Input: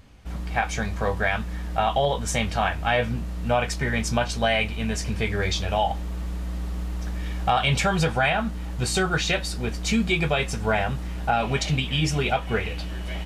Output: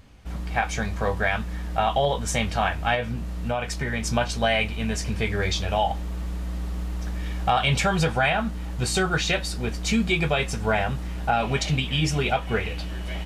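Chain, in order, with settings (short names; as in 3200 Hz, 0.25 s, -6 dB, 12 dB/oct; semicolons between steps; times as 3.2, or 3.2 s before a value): 2.94–4.03 compressor 3:1, threshold -24 dBFS, peak gain reduction 5.5 dB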